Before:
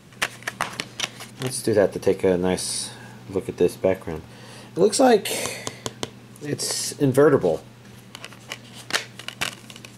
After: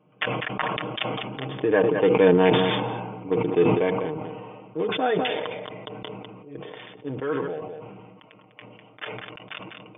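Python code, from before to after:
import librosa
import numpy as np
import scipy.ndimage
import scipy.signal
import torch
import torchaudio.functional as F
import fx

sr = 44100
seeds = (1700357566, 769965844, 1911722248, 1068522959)

y = fx.wiener(x, sr, points=25)
y = fx.doppler_pass(y, sr, speed_mps=8, closest_m=4.7, pass_at_s=2.67)
y = fx.highpass(y, sr, hz=260.0, slope=6)
y = fx.dynamic_eq(y, sr, hz=580.0, q=2.4, threshold_db=-41.0, ratio=4.0, max_db=-6)
y = fx.brickwall_lowpass(y, sr, high_hz=3600.0)
y = fx.low_shelf(y, sr, hz=380.0, db=-7.0)
y = y + 0.63 * np.pad(y, (int(6.5 * sr / 1000.0), 0))[:len(y)]
y = y + 10.0 ** (-16.5 / 20.0) * np.pad(y, (int(200 * sr / 1000.0), 0))[:len(y)]
y = fx.sustainer(y, sr, db_per_s=30.0)
y = F.gain(torch.from_numpy(y), 9.0).numpy()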